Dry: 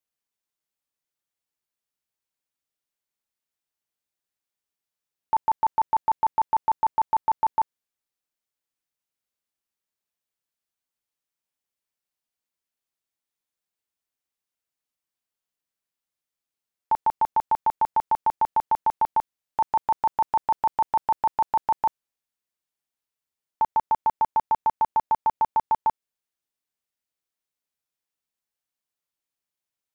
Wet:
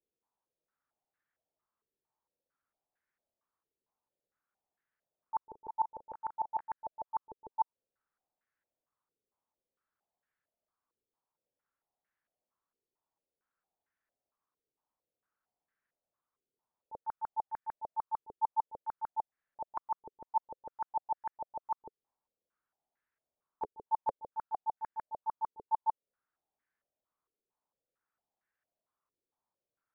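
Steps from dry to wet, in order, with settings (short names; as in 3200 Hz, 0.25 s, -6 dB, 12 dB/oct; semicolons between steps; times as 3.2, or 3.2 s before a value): auto swell 0.239 s; 5.47–6.68 doubler 37 ms -12.5 dB; stepped low-pass 4.4 Hz 430–1700 Hz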